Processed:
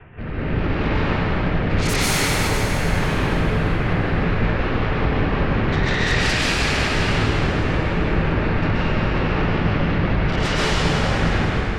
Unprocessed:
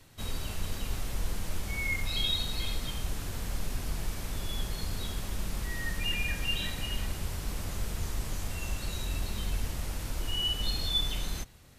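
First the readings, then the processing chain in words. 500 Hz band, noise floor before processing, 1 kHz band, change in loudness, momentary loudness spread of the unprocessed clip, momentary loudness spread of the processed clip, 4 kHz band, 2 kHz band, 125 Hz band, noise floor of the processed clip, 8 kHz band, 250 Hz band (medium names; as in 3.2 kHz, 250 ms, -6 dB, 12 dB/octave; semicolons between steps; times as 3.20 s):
+22.0 dB, -40 dBFS, +21.0 dB, +13.5 dB, 8 LU, 3 LU, +6.0 dB, +16.0 dB, +16.5 dB, -23 dBFS, +9.0 dB, +21.0 dB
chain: CVSD coder 16 kbps; low-pass 2.3 kHz 24 dB/octave; de-hum 93.36 Hz, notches 34; rotary cabinet horn 0.9 Hz, later 5.5 Hz, at 2.95 s; comb of notches 280 Hz; sine folder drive 19 dB, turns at -21 dBFS; thinning echo 102 ms, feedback 74%, level -11.5 dB; plate-style reverb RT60 2.8 s, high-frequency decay 1×, pre-delay 110 ms, DRR -8.5 dB; trim -4.5 dB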